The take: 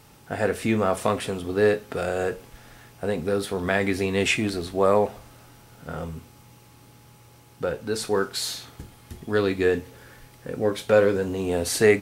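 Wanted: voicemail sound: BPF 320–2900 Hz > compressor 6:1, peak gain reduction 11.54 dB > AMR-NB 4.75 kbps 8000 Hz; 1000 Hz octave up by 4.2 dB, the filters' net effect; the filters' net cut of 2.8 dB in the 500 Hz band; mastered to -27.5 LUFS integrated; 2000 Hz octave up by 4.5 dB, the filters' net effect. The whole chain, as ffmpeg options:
-af "highpass=320,lowpass=2.9k,equalizer=f=500:t=o:g=-3.5,equalizer=f=1k:t=o:g=5.5,equalizer=f=2k:t=o:g=5,acompressor=threshold=-25dB:ratio=6,volume=5.5dB" -ar 8000 -c:a libopencore_amrnb -b:a 4750

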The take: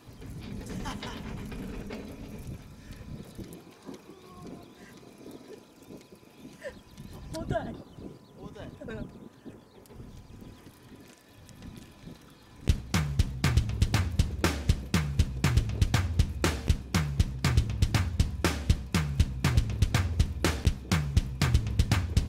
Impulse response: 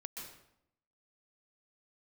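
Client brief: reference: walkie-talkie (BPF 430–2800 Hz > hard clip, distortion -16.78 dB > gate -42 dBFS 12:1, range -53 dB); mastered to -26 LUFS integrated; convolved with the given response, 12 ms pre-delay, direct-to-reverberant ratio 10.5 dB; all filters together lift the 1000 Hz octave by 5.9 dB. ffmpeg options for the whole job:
-filter_complex "[0:a]equalizer=f=1k:t=o:g=8,asplit=2[a][b];[1:a]atrim=start_sample=2205,adelay=12[c];[b][c]afir=irnorm=-1:irlink=0,volume=-8dB[d];[a][d]amix=inputs=2:normalize=0,highpass=430,lowpass=2.8k,asoftclip=type=hard:threshold=-21dB,agate=range=-53dB:threshold=-42dB:ratio=12,volume=10.5dB"

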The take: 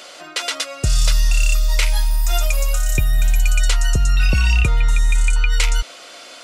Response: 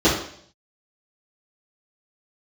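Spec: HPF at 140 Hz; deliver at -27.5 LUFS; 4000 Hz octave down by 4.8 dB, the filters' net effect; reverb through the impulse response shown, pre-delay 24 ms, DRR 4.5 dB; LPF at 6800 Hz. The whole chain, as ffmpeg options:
-filter_complex "[0:a]highpass=140,lowpass=6.8k,equalizer=f=4k:t=o:g=-6,asplit=2[a][b];[1:a]atrim=start_sample=2205,adelay=24[c];[b][c]afir=irnorm=-1:irlink=0,volume=-25.5dB[d];[a][d]amix=inputs=2:normalize=0,volume=-1.5dB"

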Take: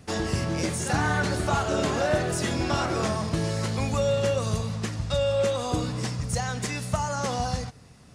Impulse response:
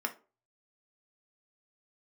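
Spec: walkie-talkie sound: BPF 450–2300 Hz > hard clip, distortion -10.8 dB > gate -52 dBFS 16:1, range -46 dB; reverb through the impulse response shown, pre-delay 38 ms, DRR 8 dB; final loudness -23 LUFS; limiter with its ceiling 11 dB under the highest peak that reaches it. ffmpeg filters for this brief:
-filter_complex "[0:a]alimiter=limit=-22.5dB:level=0:latency=1,asplit=2[a][b];[1:a]atrim=start_sample=2205,adelay=38[c];[b][c]afir=irnorm=-1:irlink=0,volume=-12.5dB[d];[a][d]amix=inputs=2:normalize=0,highpass=450,lowpass=2.3k,asoftclip=type=hard:threshold=-32.5dB,agate=range=-46dB:threshold=-52dB:ratio=16,volume=14dB"

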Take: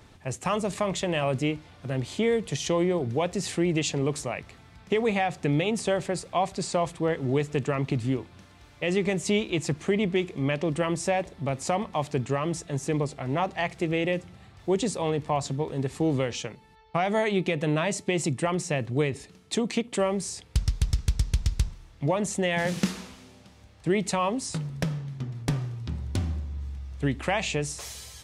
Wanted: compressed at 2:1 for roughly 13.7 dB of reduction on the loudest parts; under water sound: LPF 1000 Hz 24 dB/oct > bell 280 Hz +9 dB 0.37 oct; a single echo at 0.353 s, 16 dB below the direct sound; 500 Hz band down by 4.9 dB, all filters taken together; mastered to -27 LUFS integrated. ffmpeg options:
-af "equalizer=f=500:t=o:g=-7.5,acompressor=threshold=-45dB:ratio=2,lowpass=f=1k:w=0.5412,lowpass=f=1k:w=1.3066,equalizer=f=280:t=o:w=0.37:g=9,aecho=1:1:353:0.158,volume=13dB"

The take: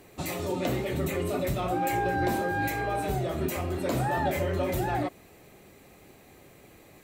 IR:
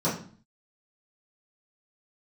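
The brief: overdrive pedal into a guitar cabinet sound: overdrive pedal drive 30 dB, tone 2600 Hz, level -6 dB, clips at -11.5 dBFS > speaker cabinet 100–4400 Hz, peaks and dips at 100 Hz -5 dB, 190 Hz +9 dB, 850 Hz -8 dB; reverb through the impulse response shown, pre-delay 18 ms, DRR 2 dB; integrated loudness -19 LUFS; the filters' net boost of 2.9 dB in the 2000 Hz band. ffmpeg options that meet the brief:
-filter_complex "[0:a]equalizer=f=2k:t=o:g=4,asplit=2[a][b];[1:a]atrim=start_sample=2205,adelay=18[c];[b][c]afir=irnorm=-1:irlink=0,volume=-14dB[d];[a][d]amix=inputs=2:normalize=0,asplit=2[e][f];[f]highpass=f=720:p=1,volume=30dB,asoftclip=type=tanh:threshold=-11.5dB[g];[e][g]amix=inputs=2:normalize=0,lowpass=f=2.6k:p=1,volume=-6dB,highpass=100,equalizer=f=100:t=q:w=4:g=-5,equalizer=f=190:t=q:w=4:g=9,equalizer=f=850:t=q:w=4:g=-8,lowpass=f=4.4k:w=0.5412,lowpass=f=4.4k:w=1.3066,volume=-0.5dB"

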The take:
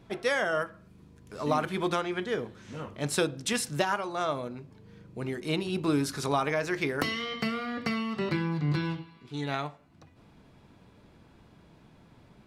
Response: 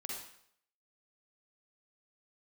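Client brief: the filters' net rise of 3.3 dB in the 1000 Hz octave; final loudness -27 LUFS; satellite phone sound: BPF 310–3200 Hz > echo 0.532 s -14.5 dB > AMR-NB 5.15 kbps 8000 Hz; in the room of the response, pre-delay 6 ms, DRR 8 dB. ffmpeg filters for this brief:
-filter_complex "[0:a]equalizer=f=1k:t=o:g=4.5,asplit=2[a][b];[1:a]atrim=start_sample=2205,adelay=6[c];[b][c]afir=irnorm=-1:irlink=0,volume=-7.5dB[d];[a][d]amix=inputs=2:normalize=0,highpass=310,lowpass=3.2k,aecho=1:1:532:0.188,volume=5dB" -ar 8000 -c:a libopencore_amrnb -b:a 5150

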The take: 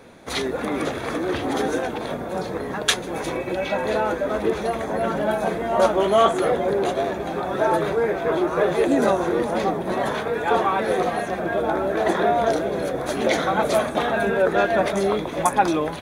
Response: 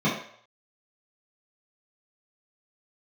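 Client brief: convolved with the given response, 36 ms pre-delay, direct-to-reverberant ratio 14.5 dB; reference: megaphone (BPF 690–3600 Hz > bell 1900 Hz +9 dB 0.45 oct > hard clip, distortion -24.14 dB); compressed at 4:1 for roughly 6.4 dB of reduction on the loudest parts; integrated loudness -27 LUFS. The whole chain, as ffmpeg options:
-filter_complex "[0:a]acompressor=threshold=-20dB:ratio=4,asplit=2[a][b];[1:a]atrim=start_sample=2205,adelay=36[c];[b][c]afir=irnorm=-1:irlink=0,volume=-29dB[d];[a][d]amix=inputs=2:normalize=0,highpass=690,lowpass=3.6k,equalizer=f=1.9k:t=o:w=0.45:g=9,asoftclip=type=hard:threshold=-17dB,volume=0.5dB"

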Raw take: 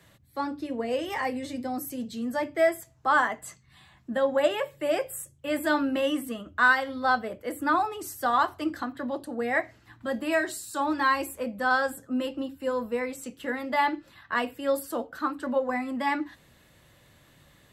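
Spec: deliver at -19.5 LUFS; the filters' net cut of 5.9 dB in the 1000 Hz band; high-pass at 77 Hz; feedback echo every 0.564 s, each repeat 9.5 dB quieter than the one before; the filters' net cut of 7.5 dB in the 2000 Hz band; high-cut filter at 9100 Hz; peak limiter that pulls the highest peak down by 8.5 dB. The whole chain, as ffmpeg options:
-af "highpass=77,lowpass=9.1k,equalizer=f=1k:t=o:g=-5.5,equalizer=f=2k:t=o:g=-8,alimiter=limit=-22.5dB:level=0:latency=1,aecho=1:1:564|1128|1692|2256:0.335|0.111|0.0365|0.012,volume=13.5dB"

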